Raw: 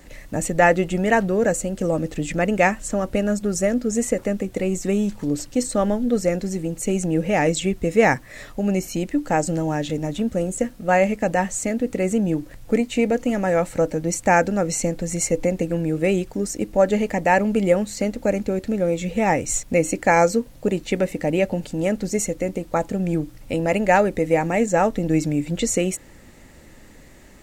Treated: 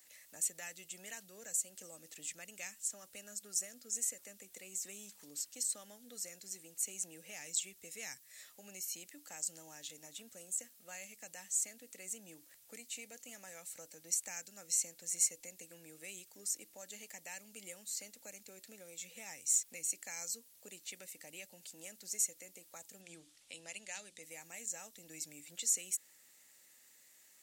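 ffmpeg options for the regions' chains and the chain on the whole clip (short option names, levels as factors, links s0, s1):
-filter_complex "[0:a]asettb=1/sr,asplit=3[s0][s1][s2];[s0]atrim=end=23.014[s3];[s1]atrim=start=23.01:end=24.23,asetpts=PTS-STARTPTS,afade=t=in:d=0.004:c=qsin,afade=t=out:st=1.216:d=0.004:c=qsin,lowpass=f=9700:w=0.5412,lowpass=f=9700:w=1.3066,equalizer=f=3400:w=2:g=6,bandreject=f=60:t=h:w=6,bandreject=f=120:t=h:w=6,bandreject=f=180:t=h:w=6,bandreject=f=240:t=h:w=6,bandreject=f=300:t=h:w=6[s4];[s2]atrim=start=24.226[s5];[s3][s4]acrossfade=d=0.004:c1=hsin:c2=qsin[s6];[s6][s5]acrossfade=d=0.004:c1=qsin:c2=hsin,aderivative,acrossover=split=210|3000[s7][s8][s9];[s8]acompressor=threshold=0.00316:ratio=3[s10];[s7][s10][s9]amix=inputs=3:normalize=0,volume=0.501"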